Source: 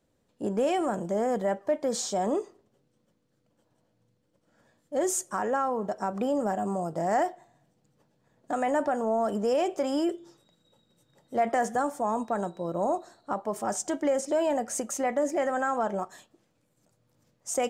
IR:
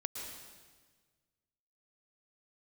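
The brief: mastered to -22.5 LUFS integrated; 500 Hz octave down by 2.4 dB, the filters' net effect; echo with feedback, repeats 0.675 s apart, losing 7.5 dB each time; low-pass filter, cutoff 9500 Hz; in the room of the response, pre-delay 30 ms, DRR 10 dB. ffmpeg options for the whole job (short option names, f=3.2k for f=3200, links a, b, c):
-filter_complex "[0:a]lowpass=9.5k,equalizer=f=500:t=o:g=-3,aecho=1:1:675|1350|2025|2700|3375:0.422|0.177|0.0744|0.0312|0.0131,asplit=2[a][b];[1:a]atrim=start_sample=2205,adelay=30[c];[b][c]afir=irnorm=-1:irlink=0,volume=-10.5dB[d];[a][d]amix=inputs=2:normalize=0,volume=7.5dB"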